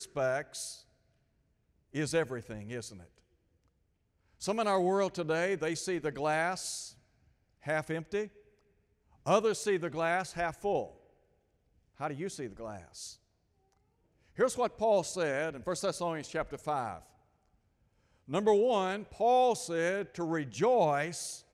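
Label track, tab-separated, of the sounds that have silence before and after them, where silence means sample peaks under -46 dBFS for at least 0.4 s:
1.940000	3.030000	sound
4.410000	6.910000	sound
7.640000	8.280000	sound
9.260000	10.900000	sound
12.000000	13.130000	sound
14.370000	16.990000	sound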